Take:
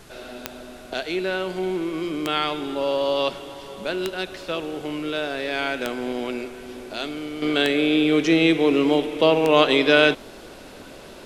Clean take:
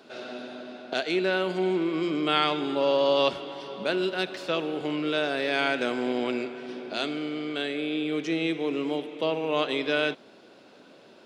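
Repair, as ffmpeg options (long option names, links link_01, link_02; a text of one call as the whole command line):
ffmpeg -i in.wav -af "adeclick=threshold=4,agate=range=-21dB:threshold=-33dB,asetnsamples=nb_out_samples=441:pad=0,asendcmd='7.42 volume volume -10dB',volume=0dB" out.wav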